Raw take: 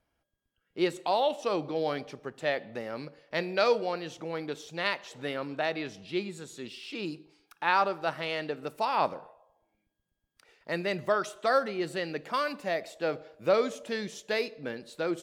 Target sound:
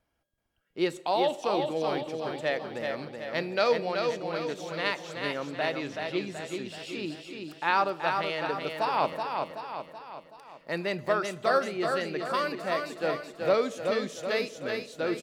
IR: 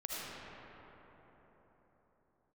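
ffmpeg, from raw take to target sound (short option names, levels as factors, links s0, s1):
-filter_complex "[0:a]asplit=2[s0][s1];[s1]aecho=0:1:378|756|1134|1512|1890|2268:0.562|0.287|0.146|0.0746|0.038|0.0194[s2];[s0][s2]amix=inputs=2:normalize=0"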